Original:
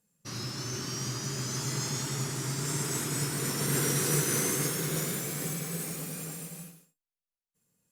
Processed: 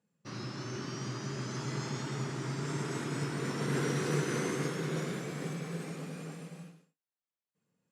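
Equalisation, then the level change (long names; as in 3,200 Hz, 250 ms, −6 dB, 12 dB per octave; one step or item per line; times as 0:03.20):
high-pass filter 130 Hz
low-pass filter 2,400 Hz 6 dB per octave
high-frequency loss of the air 55 metres
0.0 dB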